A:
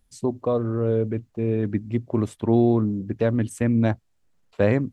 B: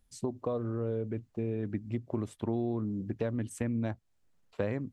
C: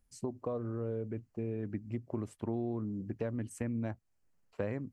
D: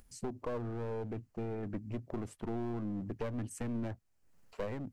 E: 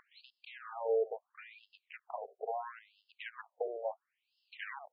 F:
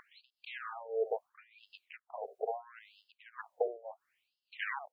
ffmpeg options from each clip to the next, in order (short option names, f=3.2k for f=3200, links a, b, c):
-af "acompressor=threshold=-27dB:ratio=3,volume=-4dB"
-af "equalizer=f=3.6k:t=o:w=0.3:g=-10,volume=-3.5dB"
-af "aeval=exprs='clip(val(0),-1,0.01)':c=same,acompressor=mode=upward:threshold=-54dB:ratio=2.5,volume=2dB"
-af "afftfilt=real='re*between(b*sr/1024,530*pow(3800/530,0.5+0.5*sin(2*PI*0.74*pts/sr))/1.41,530*pow(3800/530,0.5+0.5*sin(2*PI*0.74*pts/sr))*1.41)':imag='im*between(b*sr/1024,530*pow(3800/530,0.5+0.5*sin(2*PI*0.74*pts/sr))/1.41,530*pow(3800/530,0.5+0.5*sin(2*PI*0.74*pts/sr))*1.41)':win_size=1024:overlap=0.75,volume=10.5dB"
-af "tremolo=f=1.7:d=0.91,volume=7dB"